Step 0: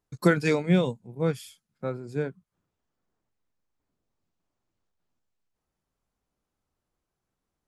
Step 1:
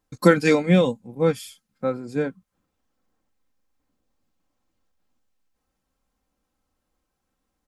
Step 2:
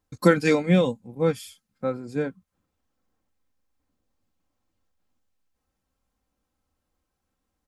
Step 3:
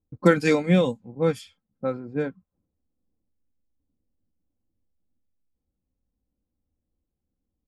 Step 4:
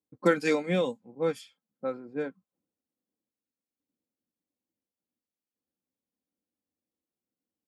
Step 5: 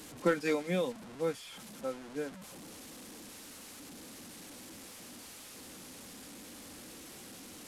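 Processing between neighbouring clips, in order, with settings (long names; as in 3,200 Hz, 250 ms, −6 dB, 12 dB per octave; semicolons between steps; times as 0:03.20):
comb filter 3.8 ms, depth 51%; level +5 dB
parametric band 83 Hz +5.5 dB 0.8 octaves; level −2.5 dB
low-pass that shuts in the quiet parts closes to 360 Hz, open at −19.5 dBFS
high-pass filter 250 Hz 12 dB per octave; level −4.5 dB
linear delta modulator 64 kbit/s, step −37.5 dBFS; level −5 dB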